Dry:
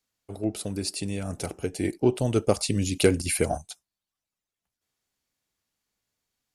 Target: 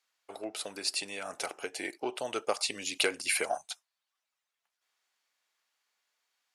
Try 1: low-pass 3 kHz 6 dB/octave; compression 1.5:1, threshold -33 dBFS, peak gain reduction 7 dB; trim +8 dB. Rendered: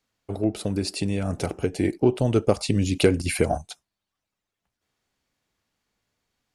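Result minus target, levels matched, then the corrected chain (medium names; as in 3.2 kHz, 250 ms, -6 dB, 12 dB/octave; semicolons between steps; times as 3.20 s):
1 kHz band -4.5 dB
low-pass 3 kHz 6 dB/octave; compression 1.5:1, threshold -33 dBFS, peak gain reduction 7 dB; high-pass 920 Hz 12 dB/octave; trim +8 dB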